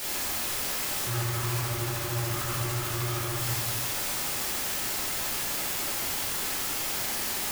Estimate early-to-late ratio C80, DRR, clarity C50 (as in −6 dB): 4.0 dB, −6.5 dB, 0.5 dB